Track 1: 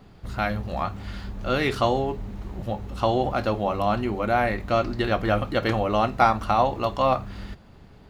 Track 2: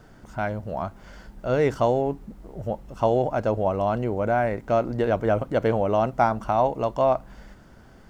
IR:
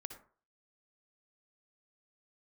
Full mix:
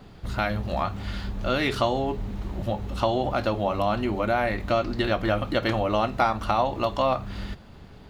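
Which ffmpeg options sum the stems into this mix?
-filter_complex "[0:a]volume=2.5dB[a];[1:a]volume=-10.5dB[b];[a][b]amix=inputs=2:normalize=0,equalizer=f=3.5k:t=o:w=0.77:g=3,acompressor=threshold=-23dB:ratio=2"

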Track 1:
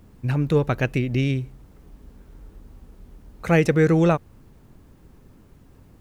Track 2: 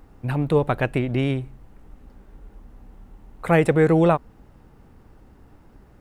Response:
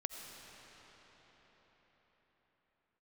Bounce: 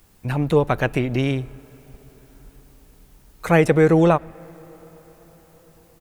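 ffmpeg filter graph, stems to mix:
-filter_complex "[0:a]highshelf=f=5.6k:g=7.5,acompressor=threshold=-33dB:ratio=2,tiltshelf=f=850:g=-8.5,volume=-4.5dB[a];[1:a]agate=range=-12dB:threshold=-39dB:ratio=16:detection=peak,volume=-1,adelay=7.6,volume=1dB,asplit=2[b][c];[c]volume=-19dB[d];[2:a]atrim=start_sample=2205[e];[d][e]afir=irnorm=-1:irlink=0[f];[a][b][f]amix=inputs=3:normalize=0"

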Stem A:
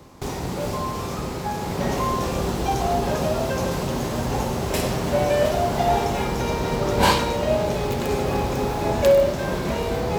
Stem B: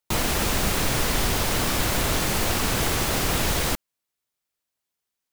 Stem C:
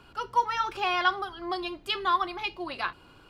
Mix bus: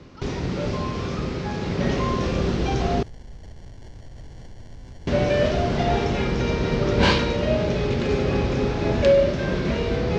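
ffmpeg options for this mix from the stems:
-filter_complex "[0:a]lowpass=3k,equalizer=f=860:w=1.5:g=-10.5,volume=3dB,asplit=3[a][b][c];[a]atrim=end=3.03,asetpts=PTS-STARTPTS,afade=t=out:st=3.026:d=0.004:c=hsin[d];[b]atrim=start=3.03:end=5.07,asetpts=PTS-STARTPTS,volume=0[e];[c]atrim=start=5.07,asetpts=PTS-STARTPTS,afade=t=in:d=0.004:c=hsin[f];[d][e][f]concat=n=3:v=0:a=1[g];[1:a]acrusher=samples=35:mix=1:aa=0.000001,adelay=2100,volume=-7.5dB[h];[2:a]volume=-11dB[i];[h][i]amix=inputs=2:normalize=0,acrossover=split=130[j][k];[k]acompressor=threshold=-44dB:ratio=10[l];[j][l]amix=inputs=2:normalize=0,alimiter=level_in=8dB:limit=-24dB:level=0:latency=1:release=126,volume=-8dB,volume=0dB[m];[g][m]amix=inputs=2:normalize=0,lowpass=f=6k:t=q:w=1.9"

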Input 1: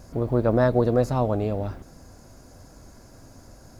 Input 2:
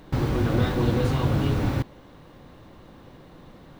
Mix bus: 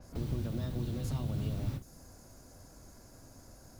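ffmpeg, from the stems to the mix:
-filter_complex "[0:a]highshelf=f=8.6k:g=5.5,acompressor=threshold=-23dB:ratio=6,adynamicequalizer=threshold=0.00141:dfrequency=5700:dqfactor=0.7:tfrequency=5700:tqfactor=0.7:attack=5:release=100:ratio=0.375:range=3:mode=boostabove:tftype=highshelf,volume=-7dB,asplit=2[a][b];[1:a]acrossover=split=940|7200[c][d][e];[c]acompressor=threshold=-30dB:ratio=4[f];[d]acompressor=threshold=-49dB:ratio=4[g];[e]acompressor=threshold=-58dB:ratio=4[h];[f][g][h]amix=inputs=3:normalize=0,volume=-1.5dB[i];[b]apad=whole_len=167446[j];[i][j]sidechaingate=range=-33dB:threshold=-42dB:ratio=16:detection=peak[k];[a][k]amix=inputs=2:normalize=0,acrossover=split=220|3000[l][m][n];[m]acompressor=threshold=-50dB:ratio=3[o];[l][o][n]amix=inputs=3:normalize=0"

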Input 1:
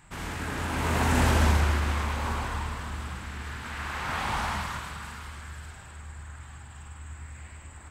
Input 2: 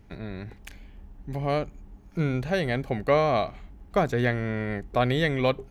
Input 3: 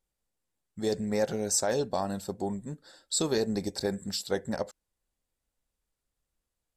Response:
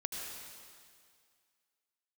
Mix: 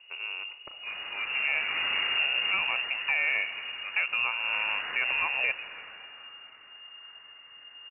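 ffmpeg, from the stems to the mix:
-filter_complex "[0:a]adelay=750,volume=-6.5dB[a];[1:a]volume=-2dB,asplit=2[b][c];[c]volume=-14.5dB[d];[2:a]highpass=610,volume=-8dB,asplit=2[e][f];[f]volume=-3dB[g];[3:a]atrim=start_sample=2205[h];[d][g]amix=inputs=2:normalize=0[i];[i][h]afir=irnorm=-1:irlink=0[j];[a][b][e][j]amix=inputs=4:normalize=0,lowpass=f=2.5k:t=q:w=0.5098,lowpass=f=2.5k:t=q:w=0.6013,lowpass=f=2.5k:t=q:w=0.9,lowpass=f=2.5k:t=q:w=2.563,afreqshift=-2900,alimiter=limit=-17.5dB:level=0:latency=1:release=267"

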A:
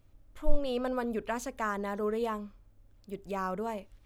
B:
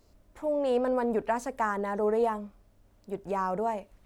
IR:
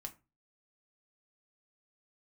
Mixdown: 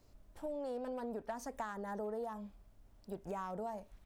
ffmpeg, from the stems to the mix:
-filter_complex "[0:a]acrossover=split=360|3000[a][b][c];[a]acompressor=threshold=-45dB:ratio=6[d];[d][b][c]amix=inputs=3:normalize=0,asoftclip=type=hard:threshold=-27dB,volume=-7dB[e];[1:a]adelay=0.7,volume=-4.5dB[f];[e][f]amix=inputs=2:normalize=0,acompressor=threshold=-38dB:ratio=6"

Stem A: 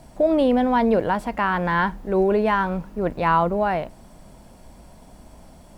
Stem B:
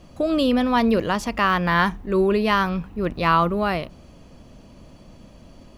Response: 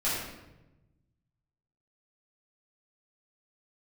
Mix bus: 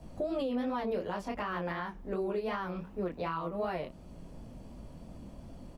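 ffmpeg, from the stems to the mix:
-filter_complex "[0:a]volume=-9.5dB[a];[1:a]flanger=delay=17.5:depth=7.4:speed=2.7,adelay=11,volume=-3.5dB[b];[a][b]amix=inputs=2:normalize=0,tiltshelf=f=710:g=4.5,acrossover=split=290|3200[c][d][e];[c]acompressor=threshold=-41dB:ratio=4[f];[d]acompressor=threshold=-26dB:ratio=4[g];[e]acompressor=threshold=-51dB:ratio=4[h];[f][g][h]amix=inputs=3:normalize=0,alimiter=level_in=1dB:limit=-24dB:level=0:latency=1:release=496,volume=-1dB"

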